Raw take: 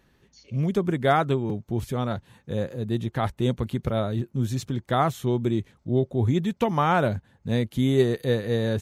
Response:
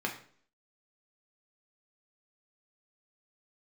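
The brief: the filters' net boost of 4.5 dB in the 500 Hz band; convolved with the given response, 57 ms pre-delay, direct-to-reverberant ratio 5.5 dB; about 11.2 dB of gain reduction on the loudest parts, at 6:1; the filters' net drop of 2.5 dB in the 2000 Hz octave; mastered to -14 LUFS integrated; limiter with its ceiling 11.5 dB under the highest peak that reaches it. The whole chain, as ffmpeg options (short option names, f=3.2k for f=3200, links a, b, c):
-filter_complex "[0:a]equalizer=f=500:t=o:g=6,equalizer=f=2k:t=o:g=-4,acompressor=threshold=-25dB:ratio=6,alimiter=level_in=1.5dB:limit=-24dB:level=0:latency=1,volume=-1.5dB,asplit=2[a][b];[1:a]atrim=start_sample=2205,adelay=57[c];[b][c]afir=irnorm=-1:irlink=0,volume=-11dB[d];[a][d]amix=inputs=2:normalize=0,volume=19.5dB"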